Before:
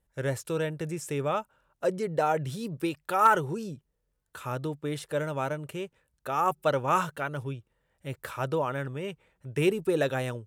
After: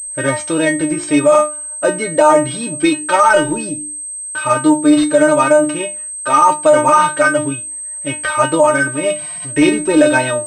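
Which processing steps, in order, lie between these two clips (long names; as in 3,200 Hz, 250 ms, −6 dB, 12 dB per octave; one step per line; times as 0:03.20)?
0:08.91–0:09.51: spike at every zero crossing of −43 dBFS
mains-hum notches 50/100/150/200/250/300/350 Hz
tape wow and flutter 19 cents
stiff-string resonator 300 Hz, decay 0.26 s, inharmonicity 0.002
boost into a limiter +35 dB
switching amplifier with a slow clock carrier 8,300 Hz
level −1 dB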